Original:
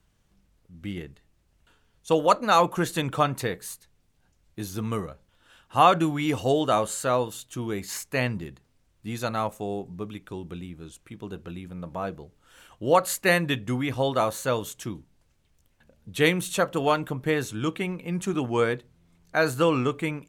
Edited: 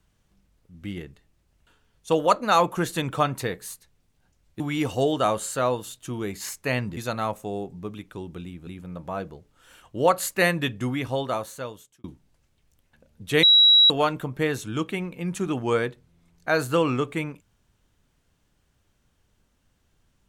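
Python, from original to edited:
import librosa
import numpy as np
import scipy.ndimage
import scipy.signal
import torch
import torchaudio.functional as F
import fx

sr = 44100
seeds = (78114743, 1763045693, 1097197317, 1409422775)

y = fx.edit(x, sr, fx.cut(start_s=4.6, length_s=1.48),
    fx.cut(start_s=8.45, length_s=0.68),
    fx.cut(start_s=10.83, length_s=0.71),
    fx.fade_out_span(start_s=13.81, length_s=1.1),
    fx.bleep(start_s=16.3, length_s=0.47, hz=3880.0, db=-11.5), tone=tone)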